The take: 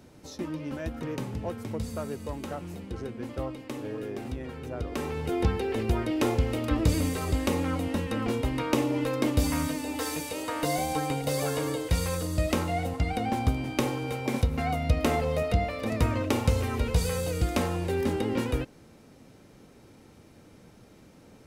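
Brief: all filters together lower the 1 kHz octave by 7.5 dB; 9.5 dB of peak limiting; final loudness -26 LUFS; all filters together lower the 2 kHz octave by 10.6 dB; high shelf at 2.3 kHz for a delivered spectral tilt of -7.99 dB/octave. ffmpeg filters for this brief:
-af "equalizer=f=1000:t=o:g=-8.5,equalizer=f=2000:t=o:g=-6.5,highshelf=f=2300:g=-8,volume=2.11,alimiter=limit=0.188:level=0:latency=1"

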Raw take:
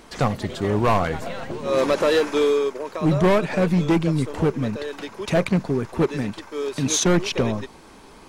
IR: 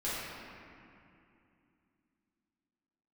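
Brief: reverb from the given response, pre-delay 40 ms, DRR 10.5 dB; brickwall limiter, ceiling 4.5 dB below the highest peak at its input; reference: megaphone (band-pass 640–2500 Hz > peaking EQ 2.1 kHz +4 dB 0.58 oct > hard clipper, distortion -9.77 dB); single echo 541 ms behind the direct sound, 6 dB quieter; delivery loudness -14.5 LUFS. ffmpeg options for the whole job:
-filter_complex "[0:a]alimiter=limit=0.133:level=0:latency=1,aecho=1:1:541:0.501,asplit=2[s0][s1];[1:a]atrim=start_sample=2205,adelay=40[s2];[s1][s2]afir=irnorm=-1:irlink=0,volume=0.141[s3];[s0][s3]amix=inputs=2:normalize=0,highpass=640,lowpass=2500,equalizer=f=2100:t=o:w=0.58:g=4,asoftclip=type=hard:threshold=0.0422,volume=8.41"

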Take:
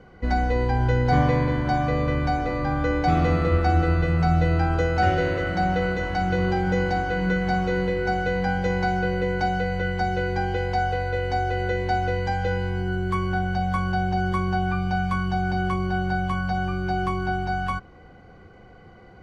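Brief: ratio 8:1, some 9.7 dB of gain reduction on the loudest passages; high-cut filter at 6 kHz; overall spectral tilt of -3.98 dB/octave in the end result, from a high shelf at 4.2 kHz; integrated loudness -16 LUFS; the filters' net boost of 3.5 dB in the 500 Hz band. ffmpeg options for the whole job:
-af "lowpass=6000,equalizer=f=500:t=o:g=4,highshelf=f=4200:g=-6.5,acompressor=threshold=0.0562:ratio=8,volume=4.73"

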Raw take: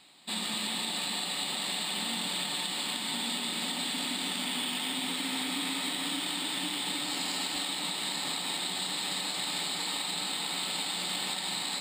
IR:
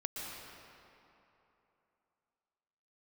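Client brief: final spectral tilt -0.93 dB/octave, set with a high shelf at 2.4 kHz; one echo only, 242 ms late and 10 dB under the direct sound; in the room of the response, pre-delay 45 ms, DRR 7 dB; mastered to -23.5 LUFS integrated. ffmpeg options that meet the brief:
-filter_complex "[0:a]highshelf=f=2400:g=8,aecho=1:1:242:0.316,asplit=2[s0][s1];[1:a]atrim=start_sample=2205,adelay=45[s2];[s1][s2]afir=irnorm=-1:irlink=0,volume=0.376[s3];[s0][s3]amix=inputs=2:normalize=0,volume=1.12"

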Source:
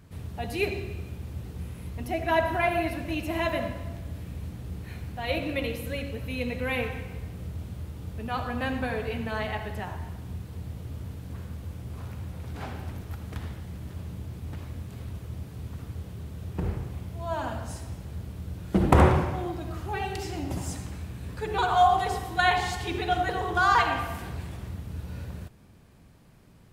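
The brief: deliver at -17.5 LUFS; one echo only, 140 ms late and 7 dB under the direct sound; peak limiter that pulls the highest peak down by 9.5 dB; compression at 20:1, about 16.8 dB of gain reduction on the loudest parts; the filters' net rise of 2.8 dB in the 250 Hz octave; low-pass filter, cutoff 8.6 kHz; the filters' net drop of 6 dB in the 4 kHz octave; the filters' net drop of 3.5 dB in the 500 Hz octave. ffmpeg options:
-af "lowpass=8600,equalizer=f=250:t=o:g=6,equalizer=f=500:t=o:g=-7,equalizer=f=4000:t=o:g=-8,acompressor=threshold=0.0355:ratio=20,alimiter=level_in=1.41:limit=0.0631:level=0:latency=1,volume=0.708,aecho=1:1:140:0.447,volume=8.91"

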